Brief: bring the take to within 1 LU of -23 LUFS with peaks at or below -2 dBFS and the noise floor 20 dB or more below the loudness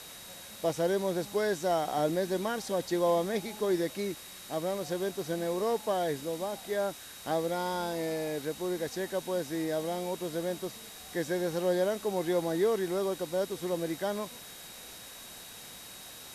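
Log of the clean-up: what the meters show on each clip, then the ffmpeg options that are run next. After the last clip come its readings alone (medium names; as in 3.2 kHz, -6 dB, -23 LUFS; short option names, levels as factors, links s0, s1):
steady tone 3.8 kHz; tone level -52 dBFS; noise floor -47 dBFS; noise floor target -52 dBFS; loudness -32.0 LUFS; peak level -17.0 dBFS; loudness target -23.0 LUFS
-> -af "bandreject=f=3800:w=30"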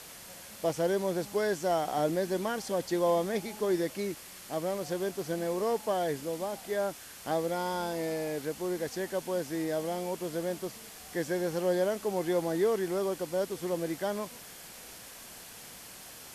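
steady tone not found; noise floor -48 dBFS; noise floor target -52 dBFS
-> -af "afftdn=nr=6:nf=-48"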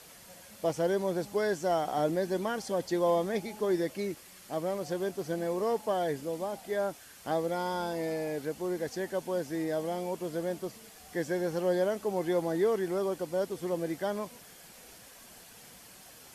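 noise floor -53 dBFS; loudness -32.0 LUFS; peak level -17.0 dBFS; loudness target -23.0 LUFS
-> -af "volume=2.82"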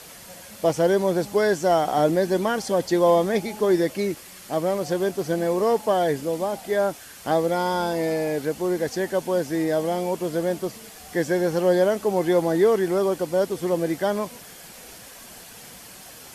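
loudness -23.0 LUFS; peak level -8.0 dBFS; noise floor -44 dBFS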